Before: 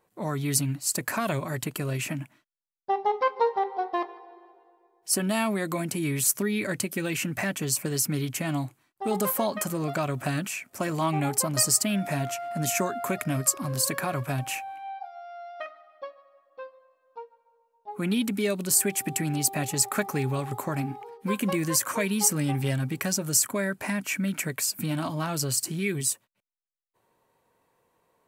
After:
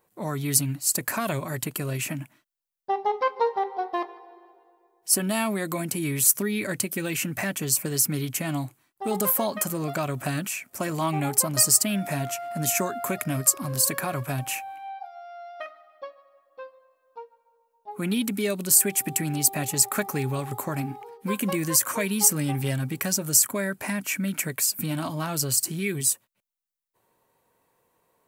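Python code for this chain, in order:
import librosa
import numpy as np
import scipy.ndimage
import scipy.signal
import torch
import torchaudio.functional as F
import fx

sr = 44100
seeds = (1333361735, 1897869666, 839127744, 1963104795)

y = fx.high_shelf(x, sr, hz=9400.0, db=9.0)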